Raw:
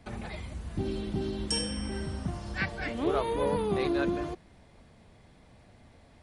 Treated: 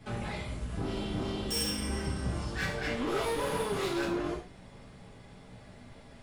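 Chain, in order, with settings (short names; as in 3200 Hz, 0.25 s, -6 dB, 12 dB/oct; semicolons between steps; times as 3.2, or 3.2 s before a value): 3.07–4.05 high shelf 3100 Hz +9.5 dB; soft clip -35 dBFS, distortion -6 dB; 0.79–2.43 flutter echo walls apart 5.1 m, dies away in 0.32 s; reverb, pre-delay 3 ms, DRR -6 dB; gain -1 dB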